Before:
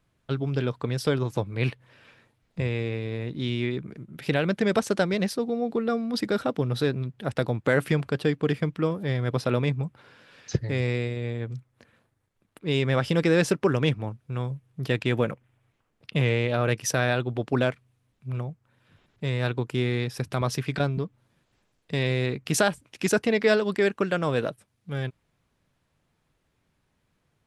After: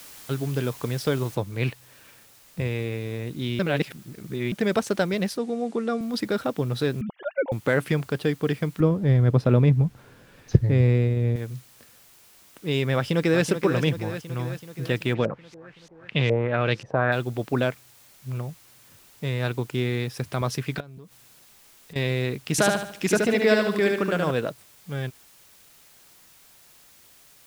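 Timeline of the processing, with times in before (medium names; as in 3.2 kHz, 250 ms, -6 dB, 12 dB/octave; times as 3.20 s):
1.35 s: noise floor step -45 dB -54 dB
3.59–4.52 s: reverse
5.37–6.01 s: elliptic band-pass 180–9000 Hz
7.01–7.52 s: formants replaced by sine waves
8.80–11.36 s: tilt EQ -3 dB/octave
12.95–13.45 s: echo throw 380 ms, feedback 65%, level -8.5 dB
15.13–17.11 s: LFO low-pass saw up 4 Hz -> 1.4 Hz 570–6500 Hz
20.80–21.96 s: compression 8:1, threshold -40 dBFS
22.51–24.31 s: feedback delay 74 ms, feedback 41%, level -3.5 dB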